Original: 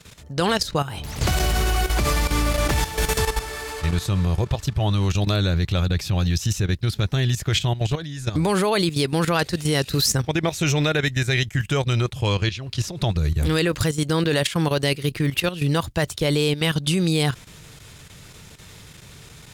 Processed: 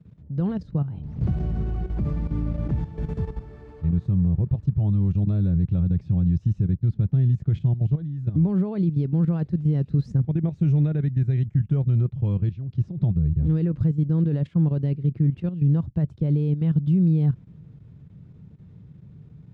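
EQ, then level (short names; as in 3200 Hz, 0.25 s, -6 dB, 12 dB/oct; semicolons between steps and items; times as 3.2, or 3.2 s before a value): band-pass 170 Hz, Q 1.6; air absorption 51 m; low shelf 170 Hz +9.5 dB; -1.0 dB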